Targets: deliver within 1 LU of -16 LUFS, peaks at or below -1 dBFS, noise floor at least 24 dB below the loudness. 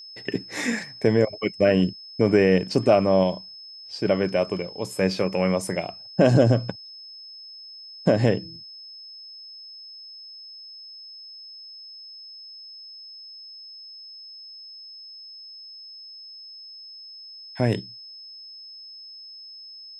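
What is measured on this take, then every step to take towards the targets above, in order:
steady tone 5.2 kHz; tone level -40 dBFS; loudness -23.0 LUFS; peak level -5.5 dBFS; loudness target -16.0 LUFS
-> band-stop 5.2 kHz, Q 30; trim +7 dB; peak limiter -1 dBFS

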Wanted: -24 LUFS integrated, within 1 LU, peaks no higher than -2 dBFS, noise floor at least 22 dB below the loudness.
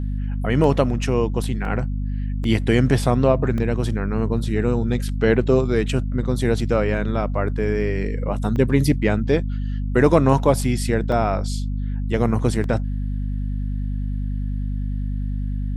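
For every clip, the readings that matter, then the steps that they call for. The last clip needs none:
dropouts 7; longest dropout 1.6 ms; hum 50 Hz; highest harmonic 250 Hz; hum level -22 dBFS; loudness -21.5 LUFS; peak level -1.5 dBFS; loudness target -24.0 LUFS
-> interpolate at 0.64/1.65/2.44/3.58/8.56/11.12/12.64 s, 1.6 ms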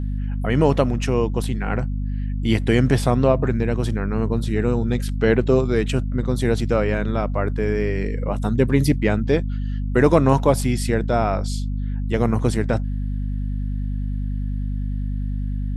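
dropouts 0; hum 50 Hz; highest harmonic 250 Hz; hum level -22 dBFS
-> hum notches 50/100/150/200/250 Hz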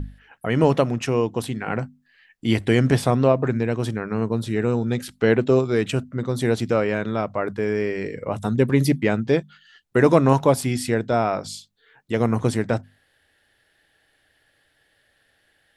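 hum not found; loudness -22.0 LUFS; peak level -2.5 dBFS; loudness target -24.0 LUFS
-> trim -2 dB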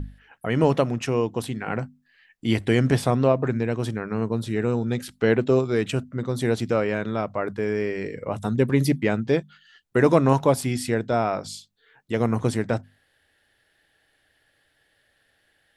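loudness -24.0 LUFS; peak level -4.5 dBFS; noise floor -67 dBFS

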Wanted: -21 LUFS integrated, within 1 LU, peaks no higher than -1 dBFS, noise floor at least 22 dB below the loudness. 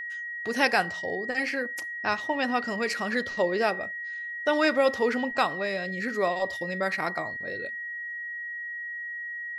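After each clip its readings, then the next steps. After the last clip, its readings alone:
steady tone 1.9 kHz; tone level -33 dBFS; loudness -28.0 LUFS; peak level -7.5 dBFS; loudness target -21.0 LUFS
-> band-stop 1.9 kHz, Q 30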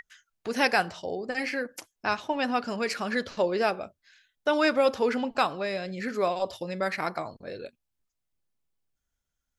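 steady tone not found; loudness -28.5 LUFS; peak level -9.0 dBFS; loudness target -21.0 LUFS
-> trim +7.5 dB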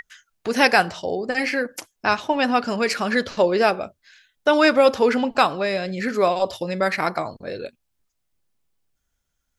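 loudness -21.0 LUFS; peak level -1.5 dBFS; noise floor -75 dBFS

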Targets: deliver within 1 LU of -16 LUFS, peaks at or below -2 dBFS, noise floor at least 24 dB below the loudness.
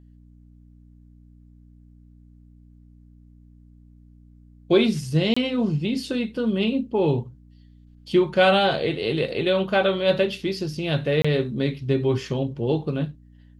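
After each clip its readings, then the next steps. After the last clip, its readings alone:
dropouts 2; longest dropout 25 ms; hum 60 Hz; highest harmonic 300 Hz; hum level -49 dBFS; loudness -23.0 LUFS; peak level -6.0 dBFS; loudness target -16.0 LUFS
-> interpolate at 5.34/11.22 s, 25 ms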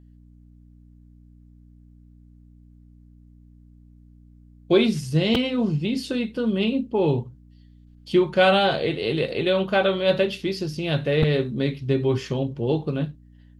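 dropouts 0; hum 60 Hz; highest harmonic 300 Hz; hum level -49 dBFS
-> de-hum 60 Hz, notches 5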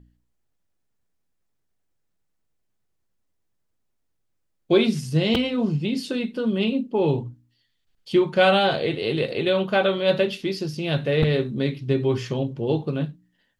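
hum not found; loudness -23.0 LUFS; peak level -6.5 dBFS; loudness target -16.0 LUFS
-> trim +7 dB; peak limiter -2 dBFS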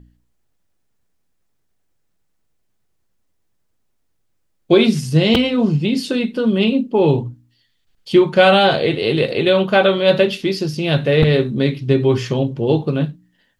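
loudness -16.0 LUFS; peak level -2.0 dBFS; noise floor -66 dBFS

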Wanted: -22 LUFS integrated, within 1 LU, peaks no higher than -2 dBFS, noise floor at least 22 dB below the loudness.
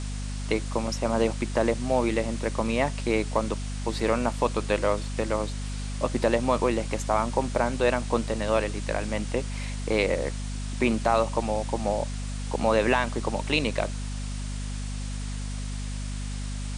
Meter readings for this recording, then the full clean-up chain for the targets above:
hum 50 Hz; highest harmonic 250 Hz; hum level -30 dBFS; noise floor -32 dBFS; noise floor target -50 dBFS; loudness -27.5 LUFS; peak level -8.0 dBFS; loudness target -22.0 LUFS
-> de-hum 50 Hz, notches 5; noise reduction 18 dB, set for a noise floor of -32 dBFS; trim +5.5 dB

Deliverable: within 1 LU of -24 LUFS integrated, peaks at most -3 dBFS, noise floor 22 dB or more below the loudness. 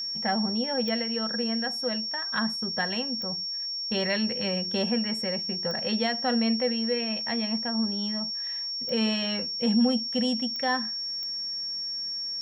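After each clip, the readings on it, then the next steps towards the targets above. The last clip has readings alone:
clicks found 6; steady tone 5.5 kHz; tone level -30 dBFS; loudness -27.0 LUFS; peak level -14.0 dBFS; loudness target -24.0 LUFS
-> de-click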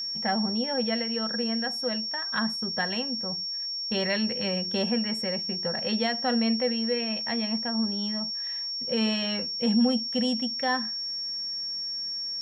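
clicks found 0; steady tone 5.5 kHz; tone level -30 dBFS
-> band-stop 5.5 kHz, Q 30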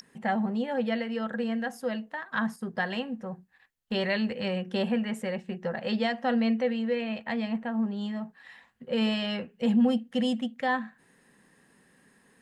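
steady tone not found; loudness -29.5 LUFS; peak level -15.5 dBFS; loudness target -24.0 LUFS
-> trim +5.5 dB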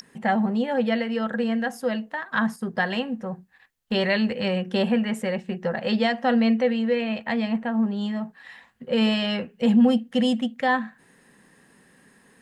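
loudness -24.0 LUFS; peak level -10.0 dBFS; noise floor -58 dBFS

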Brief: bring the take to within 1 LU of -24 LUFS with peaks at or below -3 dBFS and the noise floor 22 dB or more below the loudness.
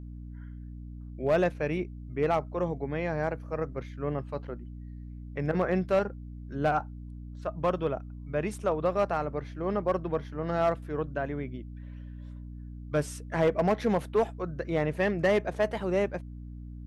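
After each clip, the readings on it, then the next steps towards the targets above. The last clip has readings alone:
clipped samples 0.5%; clipping level -18.0 dBFS; hum 60 Hz; highest harmonic 300 Hz; hum level -39 dBFS; loudness -30.0 LUFS; peak level -18.0 dBFS; loudness target -24.0 LUFS
-> clip repair -18 dBFS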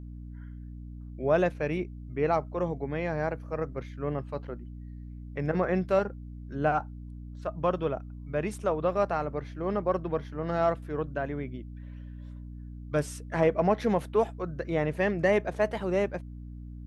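clipped samples 0.0%; hum 60 Hz; highest harmonic 300 Hz; hum level -39 dBFS
-> de-hum 60 Hz, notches 5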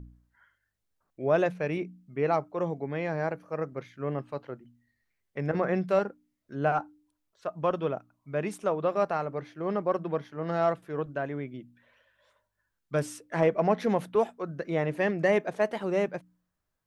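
hum not found; loudness -30.0 LUFS; peak level -12.0 dBFS; loudness target -24.0 LUFS
-> trim +6 dB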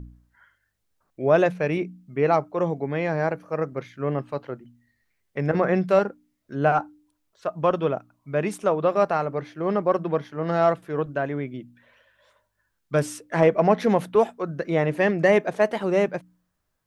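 loudness -24.0 LUFS; peak level -6.0 dBFS; noise floor -75 dBFS

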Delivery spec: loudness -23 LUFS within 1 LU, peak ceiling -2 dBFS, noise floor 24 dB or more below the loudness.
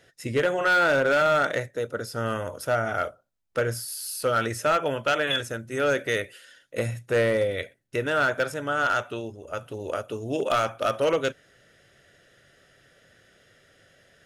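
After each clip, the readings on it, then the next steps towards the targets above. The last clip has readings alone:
clipped samples 1.2%; clipping level -16.5 dBFS; loudness -26.0 LUFS; peak level -16.5 dBFS; loudness target -23.0 LUFS
-> clip repair -16.5 dBFS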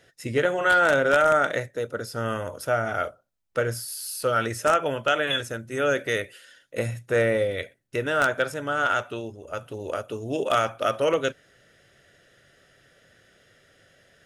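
clipped samples 0.0%; loudness -25.0 LUFS; peak level -7.5 dBFS; loudness target -23.0 LUFS
-> trim +2 dB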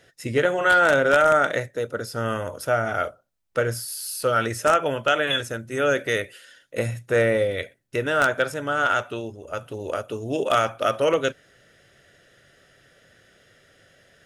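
loudness -23.0 LUFS; peak level -5.5 dBFS; noise floor -61 dBFS

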